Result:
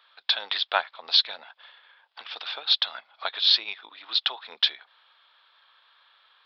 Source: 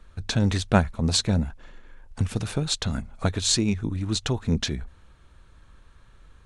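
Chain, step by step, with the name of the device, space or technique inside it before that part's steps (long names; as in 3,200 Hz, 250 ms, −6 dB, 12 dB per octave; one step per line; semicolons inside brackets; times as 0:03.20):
musical greeting card (downsampling to 11,025 Hz; high-pass filter 750 Hz 24 dB per octave; parametric band 3,400 Hz +11 dB 0.4 octaves)
0:00.97–0:01.39: dynamic equaliser 780 Hz, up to −5 dB, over −43 dBFS, Q 0.72
level +1.5 dB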